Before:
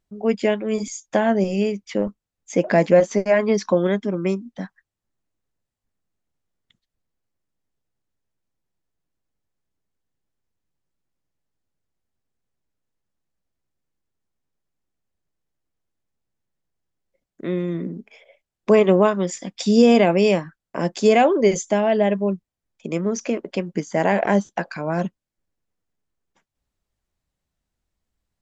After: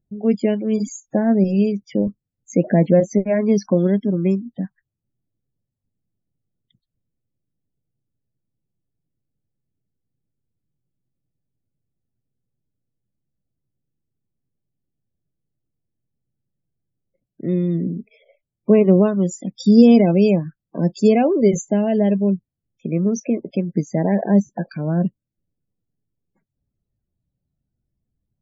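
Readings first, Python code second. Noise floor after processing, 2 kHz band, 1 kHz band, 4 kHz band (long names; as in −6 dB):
−83 dBFS, −8.5 dB, −6.0 dB, −6.0 dB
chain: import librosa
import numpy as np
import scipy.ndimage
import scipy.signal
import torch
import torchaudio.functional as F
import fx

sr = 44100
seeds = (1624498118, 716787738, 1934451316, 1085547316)

y = fx.spec_topn(x, sr, count=32)
y = fx.graphic_eq(y, sr, hz=(125, 250, 1000, 2000), db=(11, 3, -9, -6))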